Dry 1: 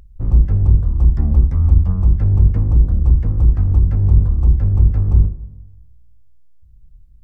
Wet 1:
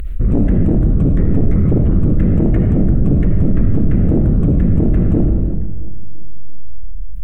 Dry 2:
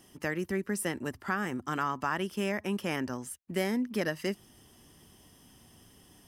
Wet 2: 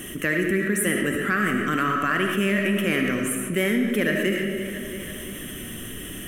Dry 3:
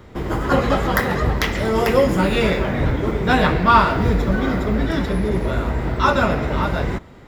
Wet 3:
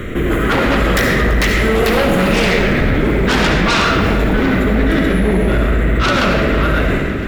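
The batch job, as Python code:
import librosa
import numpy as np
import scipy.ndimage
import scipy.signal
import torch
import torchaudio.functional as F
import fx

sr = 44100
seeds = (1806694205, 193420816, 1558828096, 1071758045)

p1 = fx.peak_eq(x, sr, hz=98.0, db=-6.5, octaves=2.0)
p2 = fx.fixed_phaser(p1, sr, hz=2100.0, stages=4)
p3 = fx.fold_sine(p2, sr, drive_db=15, ceiling_db=-4.0)
p4 = p3 + fx.echo_feedback(p3, sr, ms=337, feedback_pct=53, wet_db=-19, dry=0)
p5 = fx.rev_freeverb(p4, sr, rt60_s=1.1, hf_ratio=0.8, predelay_ms=30, drr_db=2.5)
p6 = fx.env_flatten(p5, sr, amount_pct=50)
y = F.gain(torch.from_numpy(p6), -9.0).numpy()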